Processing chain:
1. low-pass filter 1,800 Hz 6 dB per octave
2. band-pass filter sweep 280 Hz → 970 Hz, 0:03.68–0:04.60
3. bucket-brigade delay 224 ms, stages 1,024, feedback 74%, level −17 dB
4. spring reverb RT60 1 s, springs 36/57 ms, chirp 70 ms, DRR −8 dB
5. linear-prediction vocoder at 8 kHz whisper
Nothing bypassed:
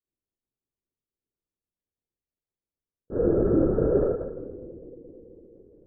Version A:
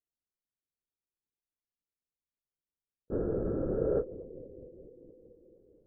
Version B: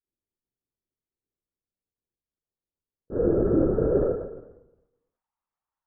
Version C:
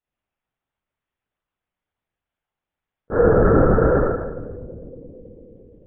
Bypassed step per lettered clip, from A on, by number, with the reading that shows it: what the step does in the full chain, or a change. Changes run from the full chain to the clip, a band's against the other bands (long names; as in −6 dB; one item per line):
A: 4, 250 Hz band −2.0 dB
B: 3, change in momentary loudness spread −7 LU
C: 2, 1 kHz band +11.0 dB